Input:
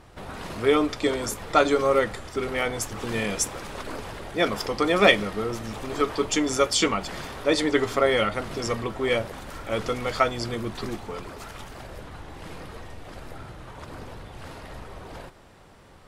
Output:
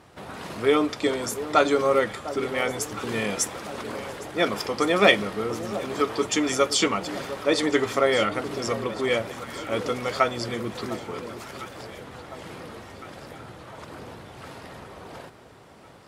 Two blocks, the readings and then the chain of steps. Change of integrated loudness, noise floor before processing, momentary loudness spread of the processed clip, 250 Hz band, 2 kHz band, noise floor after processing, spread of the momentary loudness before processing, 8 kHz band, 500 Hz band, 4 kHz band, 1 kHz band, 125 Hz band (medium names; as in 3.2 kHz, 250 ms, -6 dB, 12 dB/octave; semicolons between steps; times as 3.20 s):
0.0 dB, -50 dBFS, 20 LU, 0.0 dB, 0.0 dB, -49 dBFS, 20 LU, 0.0 dB, +0.5 dB, 0.0 dB, 0.0 dB, -2.0 dB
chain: high-pass 110 Hz 12 dB/octave; echo whose repeats swap between lows and highs 704 ms, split 1.1 kHz, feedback 70%, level -12.5 dB